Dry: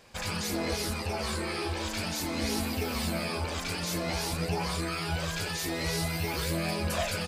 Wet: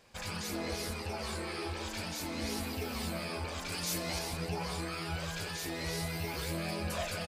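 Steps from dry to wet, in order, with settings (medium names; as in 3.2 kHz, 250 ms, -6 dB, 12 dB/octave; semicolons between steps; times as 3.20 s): 3.72–4.19 s: treble shelf 4.2 kHz +8.5 dB; speakerphone echo 190 ms, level -8 dB; trim -6 dB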